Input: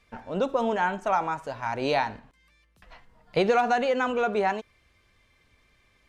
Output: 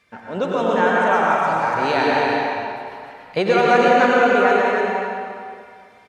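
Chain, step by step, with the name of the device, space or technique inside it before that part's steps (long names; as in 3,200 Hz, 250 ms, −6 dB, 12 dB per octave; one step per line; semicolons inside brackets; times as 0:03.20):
stadium PA (high-pass filter 120 Hz 12 dB per octave; parametric band 1,700 Hz +4 dB 0.68 octaves; loudspeakers that aren't time-aligned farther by 61 metres −11 dB, 99 metres −5 dB; convolution reverb RT60 2.3 s, pre-delay 86 ms, DRR −3.5 dB)
level +2.5 dB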